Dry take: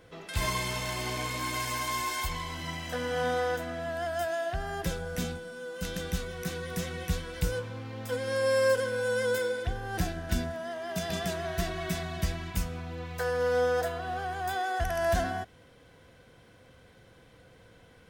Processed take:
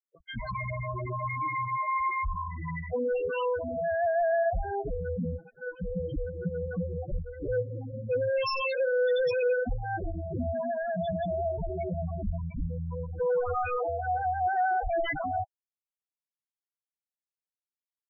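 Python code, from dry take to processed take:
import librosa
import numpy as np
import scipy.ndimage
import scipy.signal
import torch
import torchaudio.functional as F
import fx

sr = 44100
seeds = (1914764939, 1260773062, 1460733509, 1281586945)

y = (np.mod(10.0 ** (24.5 / 20.0) * x + 1.0, 2.0) - 1.0) / 10.0 ** (24.5 / 20.0)
y = fx.quant_dither(y, sr, seeds[0], bits=6, dither='none')
y = fx.spec_topn(y, sr, count=4)
y = y * librosa.db_to_amplitude(7.0)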